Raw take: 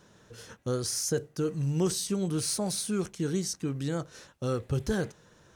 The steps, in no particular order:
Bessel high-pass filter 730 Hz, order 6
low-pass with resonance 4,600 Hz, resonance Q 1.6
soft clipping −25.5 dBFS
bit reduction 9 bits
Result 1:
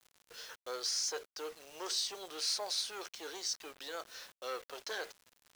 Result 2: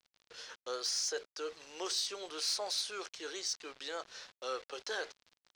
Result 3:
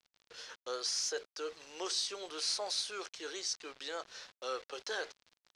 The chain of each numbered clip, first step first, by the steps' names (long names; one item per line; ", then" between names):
low-pass with resonance, then soft clipping, then Bessel high-pass filter, then bit reduction
Bessel high-pass filter, then bit reduction, then low-pass with resonance, then soft clipping
Bessel high-pass filter, then bit reduction, then soft clipping, then low-pass with resonance